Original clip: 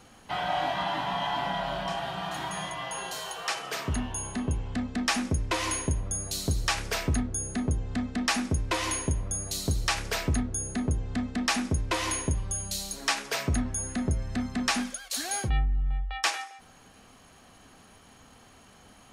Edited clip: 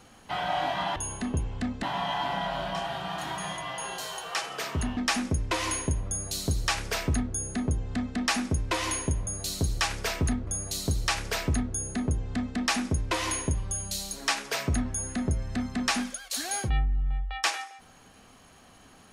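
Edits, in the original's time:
4.1–4.97 move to 0.96
6.14–7.34 copy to 9.27

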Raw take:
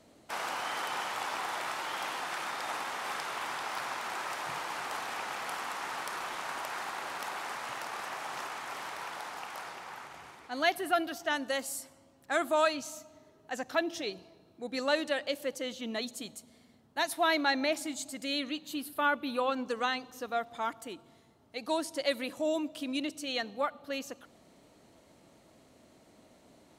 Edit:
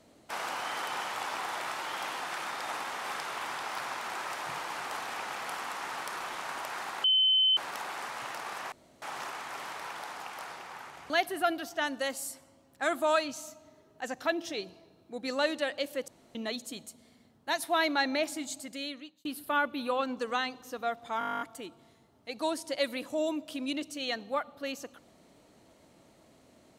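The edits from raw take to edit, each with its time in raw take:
7.04 add tone 3060 Hz -21 dBFS 0.53 s
8.19 insert room tone 0.30 s
10.27–10.59 cut
15.57–15.84 room tone
18.04–18.74 fade out
20.68 stutter 0.02 s, 12 plays

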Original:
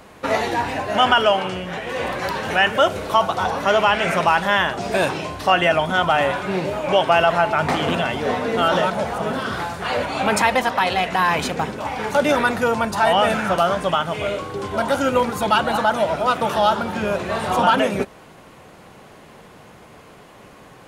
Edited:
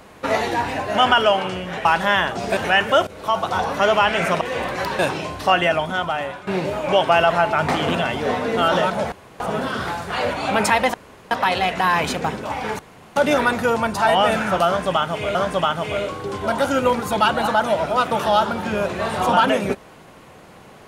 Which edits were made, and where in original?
1.85–2.43 swap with 4.27–4.99
2.93–3.36 fade in, from -15.5 dB
5.49–6.47 fade out, to -13 dB
9.12 insert room tone 0.28 s
10.66 insert room tone 0.37 s
12.14 insert room tone 0.37 s
13.65–14.33 loop, 2 plays

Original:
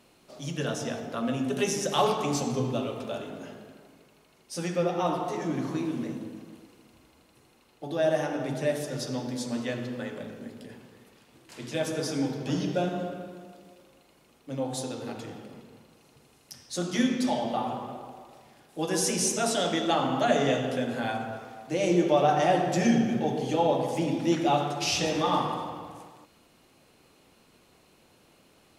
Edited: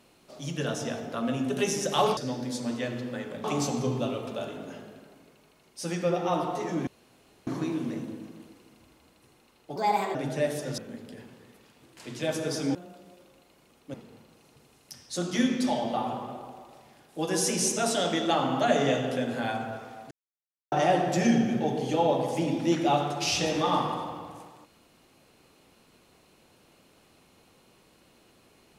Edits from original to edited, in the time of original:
5.6 insert room tone 0.60 s
7.89–8.4 speed 131%
9.03–10.3 move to 2.17
12.27–13.34 cut
14.53–15.54 cut
21.71–22.32 mute

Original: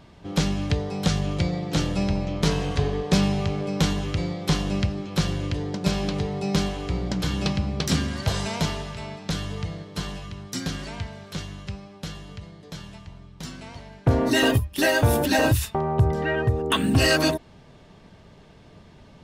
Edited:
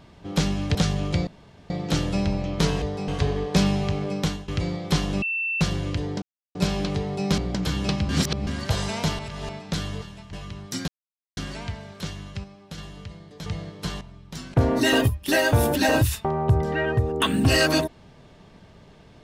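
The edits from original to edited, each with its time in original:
0.75–1.01 move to 2.65
1.53 insert room tone 0.43 s
3.7–4.05 fade out, to -18 dB
4.79–5.18 bleep 2680 Hz -23.5 dBFS
5.79 insert silence 0.33 s
6.62–6.95 cut
7.66–8.04 reverse
8.76–9.06 reverse
9.59–10.14 swap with 12.78–13.09
10.69 insert silence 0.49 s
11.76–12.1 gain -4 dB
13.62–14.04 cut

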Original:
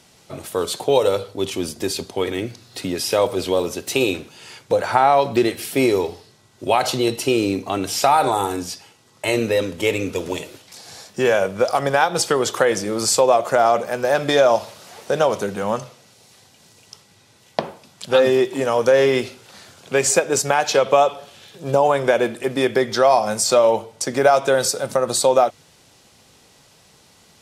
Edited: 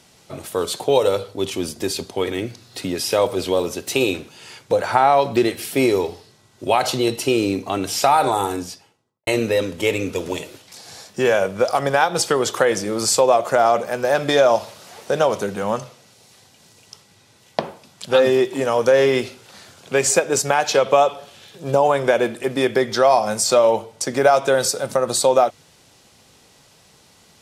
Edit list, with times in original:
8.49–9.27 studio fade out

